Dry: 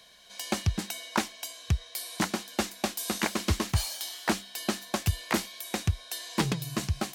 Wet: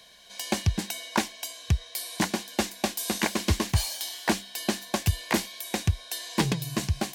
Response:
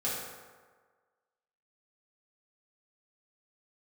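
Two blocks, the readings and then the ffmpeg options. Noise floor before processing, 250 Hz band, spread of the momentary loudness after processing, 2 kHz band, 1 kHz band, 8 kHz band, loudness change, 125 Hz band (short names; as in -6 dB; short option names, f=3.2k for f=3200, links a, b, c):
-50 dBFS, +2.5 dB, 6 LU, +2.0 dB, +1.5 dB, +2.5 dB, +2.5 dB, +2.5 dB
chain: -af "bandreject=f=1.3k:w=6.4,volume=2.5dB"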